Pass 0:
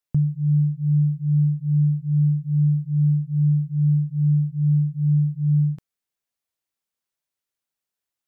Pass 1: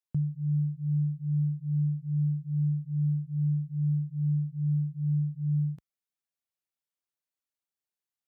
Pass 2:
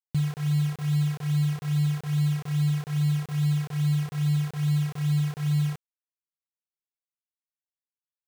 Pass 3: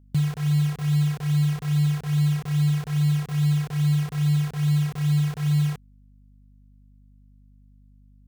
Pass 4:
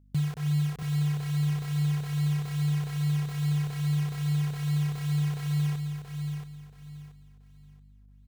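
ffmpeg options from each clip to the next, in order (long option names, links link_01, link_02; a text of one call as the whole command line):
ffmpeg -i in.wav -af "highpass=50,volume=-8.5dB" out.wav
ffmpeg -i in.wav -af "acrusher=bits=6:mix=0:aa=0.000001,volume=3dB" out.wav
ffmpeg -i in.wav -af "aeval=exprs='val(0)+0.00178*(sin(2*PI*50*n/s)+sin(2*PI*2*50*n/s)/2+sin(2*PI*3*50*n/s)/3+sin(2*PI*4*50*n/s)/4+sin(2*PI*5*50*n/s)/5)':channel_layout=same,volume=3dB" out.wav
ffmpeg -i in.wav -af "aecho=1:1:679|1358|2037|2716:0.473|0.132|0.0371|0.0104,volume=-5dB" out.wav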